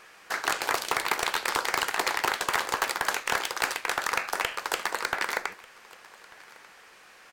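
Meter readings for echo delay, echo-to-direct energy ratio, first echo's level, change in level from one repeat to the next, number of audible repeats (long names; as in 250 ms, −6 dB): 1,192 ms, −23.5 dB, −23.5 dB, repeats not evenly spaced, 1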